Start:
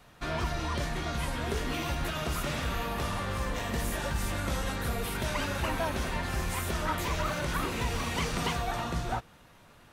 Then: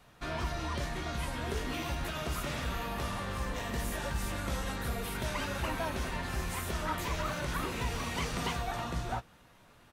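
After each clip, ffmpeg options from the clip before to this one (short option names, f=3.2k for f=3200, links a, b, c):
-filter_complex "[0:a]asplit=2[a][b];[b]adelay=16,volume=-13dB[c];[a][c]amix=inputs=2:normalize=0,volume=-3.5dB"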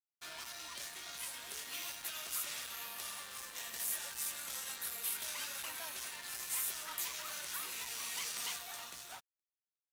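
-af "aeval=exprs='0.0841*(cos(1*acos(clip(val(0)/0.0841,-1,1)))-cos(1*PI/2))+0.00841*(cos(5*acos(clip(val(0)/0.0841,-1,1)))-cos(5*PI/2))':c=same,aderivative,aeval=exprs='sgn(val(0))*max(abs(val(0))-0.00158,0)':c=same,volume=4dB"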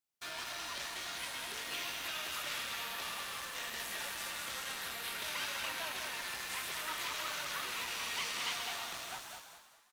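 -filter_complex "[0:a]asplit=2[a][b];[b]asplit=4[c][d][e][f];[c]adelay=203,afreqshift=-33,volume=-6dB[g];[d]adelay=406,afreqshift=-66,volume=-15.6dB[h];[e]adelay=609,afreqshift=-99,volume=-25.3dB[i];[f]adelay=812,afreqshift=-132,volume=-34.9dB[j];[g][h][i][j]amix=inputs=4:normalize=0[k];[a][k]amix=inputs=2:normalize=0,acrossover=split=4500[l][m];[m]acompressor=threshold=-53dB:ratio=4:attack=1:release=60[n];[l][n]amix=inputs=2:normalize=0,asplit=2[o][p];[p]asplit=6[q][r][s][t][u][v];[q]adelay=133,afreqshift=81,volume=-9.5dB[w];[r]adelay=266,afreqshift=162,volume=-14.9dB[x];[s]adelay=399,afreqshift=243,volume=-20.2dB[y];[t]adelay=532,afreqshift=324,volume=-25.6dB[z];[u]adelay=665,afreqshift=405,volume=-30.9dB[aa];[v]adelay=798,afreqshift=486,volume=-36.3dB[ab];[w][x][y][z][aa][ab]amix=inputs=6:normalize=0[ac];[o][ac]amix=inputs=2:normalize=0,volume=5.5dB"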